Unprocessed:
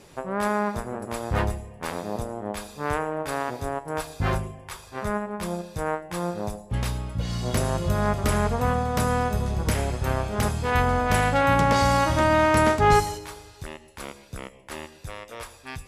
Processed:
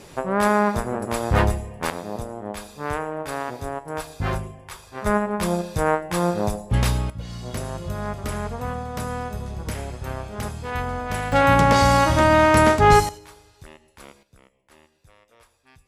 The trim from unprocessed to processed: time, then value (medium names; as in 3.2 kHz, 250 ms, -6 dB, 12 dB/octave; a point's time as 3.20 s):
+6 dB
from 1.90 s -0.5 dB
from 5.06 s +7 dB
from 7.10 s -5.5 dB
from 11.32 s +4 dB
from 13.09 s -7 dB
from 14.23 s -17 dB